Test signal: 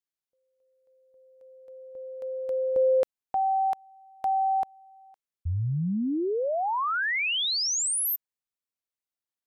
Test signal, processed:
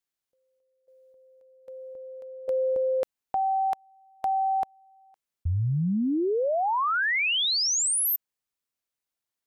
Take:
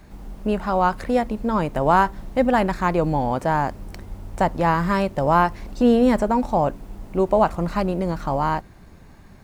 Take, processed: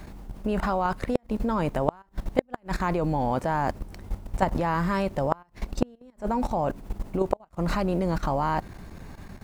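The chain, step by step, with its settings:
output level in coarse steps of 16 dB
gate with flip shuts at −13 dBFS, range −39 dB
level +7 dB

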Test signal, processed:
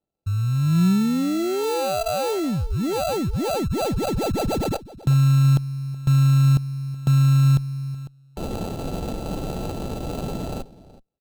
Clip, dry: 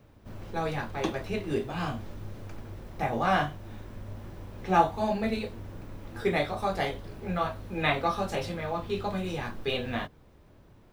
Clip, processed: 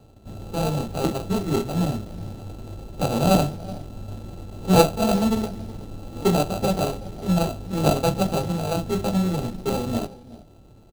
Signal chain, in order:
dynamic equaliser 180 Hz, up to +7 dB, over −48 dBFS, Q 2.4
decimation without filtering 33×
linear-phase brick-wall band-stop 910–3,100 Hz
slap from a distant wall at 64 metres, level −18 dB
windowed peak hold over 9 samples
level +6 dB

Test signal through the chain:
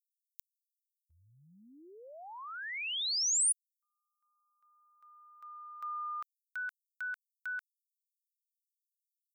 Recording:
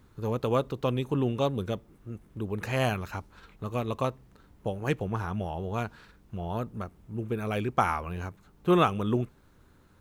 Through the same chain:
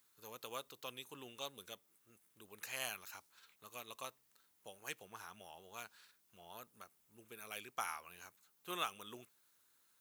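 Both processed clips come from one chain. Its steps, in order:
first difference

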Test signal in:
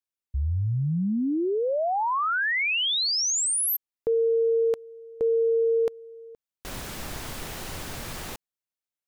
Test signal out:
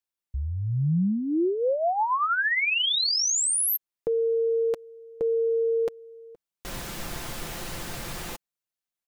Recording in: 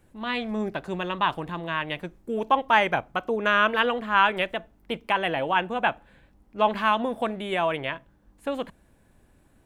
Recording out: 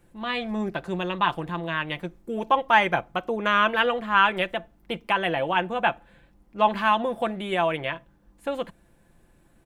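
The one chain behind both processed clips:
comb filter 5.8 ms, depth 39%

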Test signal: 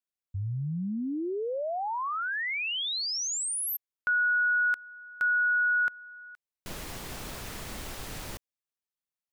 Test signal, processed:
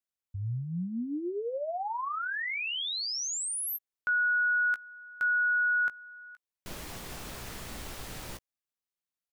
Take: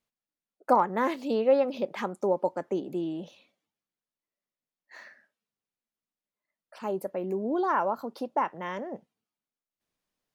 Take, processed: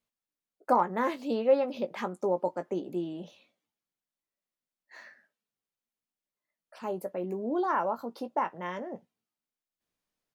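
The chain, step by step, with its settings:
double-tracking delay 17 ms −9.5 dB
level −2.5 dB

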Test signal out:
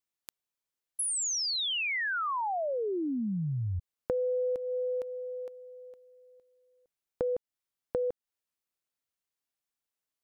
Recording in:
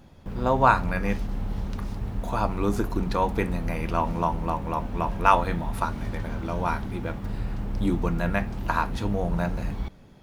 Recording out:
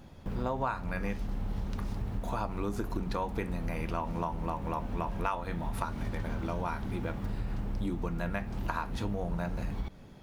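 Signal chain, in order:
downward compressor 5 to 1, threshold −30 dBFS

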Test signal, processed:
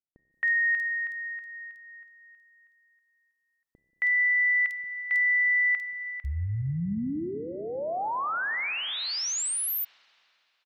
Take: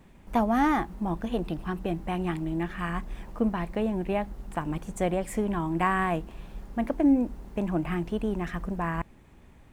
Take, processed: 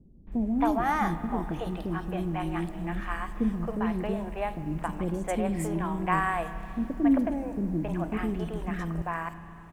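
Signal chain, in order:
three-band delay without the direct sound lows, mids, highs 270/320 ms, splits 430/3,400 Hz
spring reverb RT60 3.1 s, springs 30/36/46 ms, chirp 35 ms, DRR 11.5 dB

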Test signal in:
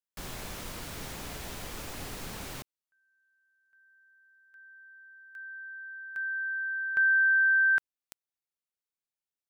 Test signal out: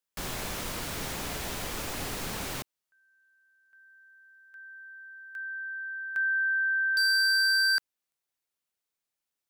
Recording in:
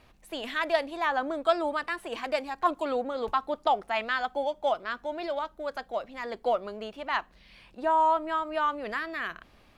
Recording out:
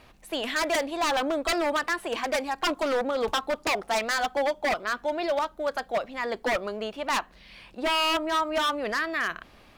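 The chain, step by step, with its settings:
wave folding −25 dBFS
low-shelf EQ 170 Hz −3.5 dB
level +6 dB

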